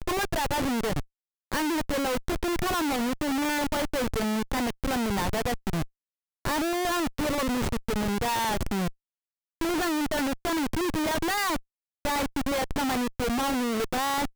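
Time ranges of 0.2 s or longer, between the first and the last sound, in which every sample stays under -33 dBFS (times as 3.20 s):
1.01–1.52 s
5.84–6.45 s
8.89–9.61 s
11.58–12.05 s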